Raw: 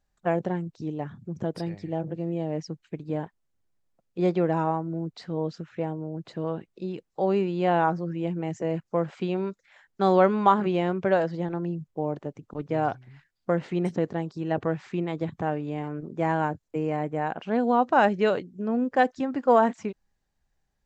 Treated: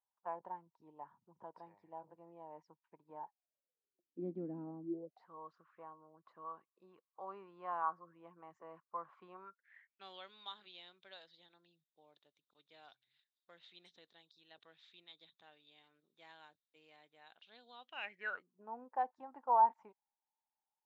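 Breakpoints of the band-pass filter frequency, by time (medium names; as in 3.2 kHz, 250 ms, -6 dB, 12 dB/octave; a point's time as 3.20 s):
band-pass filter, Q 12
3.19 s 950 Hz
4.26 s 260 Hz
4.83 s 260 Hz
5.29 s 1.1 kHz
9.35 s 1.1 kHz
10.27 s 3.7 kHz
17.80 s 3.7 kHz
18.60 s 900 Hz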